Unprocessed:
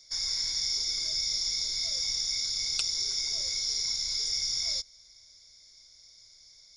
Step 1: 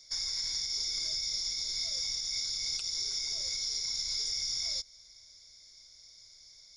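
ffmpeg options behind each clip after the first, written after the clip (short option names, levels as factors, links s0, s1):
-af "alimiter=level_in=1.06:limit=0.0631:level=0:latency=1:release=136,volume=0.944"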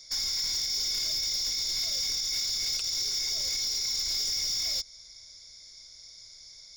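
-af "volume=42.2,asoftclip=hard,volume=0.0237,volume=2"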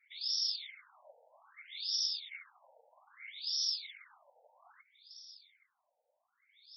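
-af "afftfilt=real='hypot(re,im)*cos(2*PI*random(0))':imag='hypot(re,im)*sin(2*PI*random(1))':win_size=512:overlap=0.75,afftfilt=real='re*between(b*sr/1024,650*pow(4200/650,0.5+0.5*sin(2*PI*0.62*pts/sr))/1.41,650*pow(4200/650,0.5+0.5*sin(2*PI*0.62*pts/sr))*1.41)':imag='im*between(b*sr/1024,650*pow(4200/650,0.5+0.5*sin(2*PI*0.62*pts/sr))/1.41,650*pow(4200/650,0.5+0.5*sin(2*PI*0.62*pts/sr))*1.41)':win_size=1024:overlap=0.75,volume=1.5"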